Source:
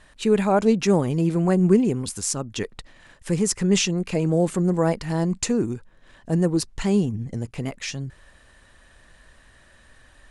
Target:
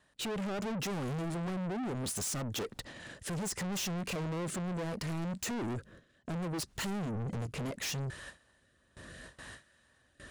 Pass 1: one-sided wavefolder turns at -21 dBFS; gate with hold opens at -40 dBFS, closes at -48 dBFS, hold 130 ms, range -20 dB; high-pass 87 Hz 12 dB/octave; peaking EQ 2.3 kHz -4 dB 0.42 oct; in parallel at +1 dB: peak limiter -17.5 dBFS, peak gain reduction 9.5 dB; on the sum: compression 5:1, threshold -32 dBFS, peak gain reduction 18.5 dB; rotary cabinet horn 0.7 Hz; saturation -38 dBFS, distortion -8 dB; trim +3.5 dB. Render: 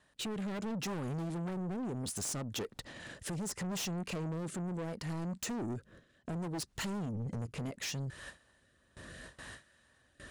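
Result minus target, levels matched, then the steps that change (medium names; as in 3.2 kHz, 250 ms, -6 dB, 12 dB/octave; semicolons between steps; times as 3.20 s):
one-sided wavefolder: distortion +26 dB; compression: peak gain reduction +7.5 dB
change: one-sided wavefolder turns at -10.5 dBFS; change: compression 5:1, threshold -20.5 dBFS, peak gain reduction 11 dB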